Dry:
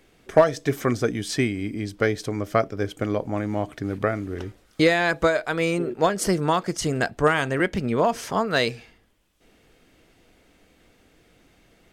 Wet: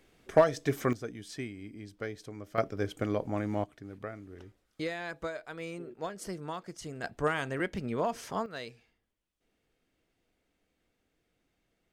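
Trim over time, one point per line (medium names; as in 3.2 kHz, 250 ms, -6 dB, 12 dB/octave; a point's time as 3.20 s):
-6 dB
from 0.93 s -16 dB
from 2.58 s -6 dB
from 3.64 s -17 dB
from 7.04 s -10 dB
from 8.46 s -19.5 dB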